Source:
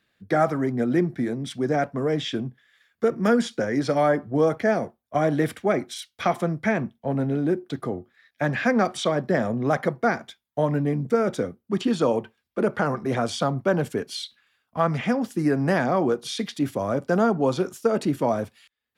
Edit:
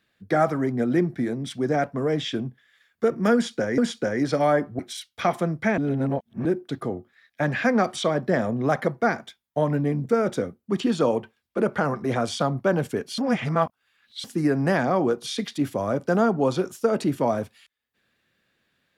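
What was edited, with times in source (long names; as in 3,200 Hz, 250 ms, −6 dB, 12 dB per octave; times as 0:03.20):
0:03.34–0:03.78: repeat, 2 plays
0:04.35–0:05.80: remove
0:06.79–0:07.46: reverse
0:14.19–0:15.25: reverse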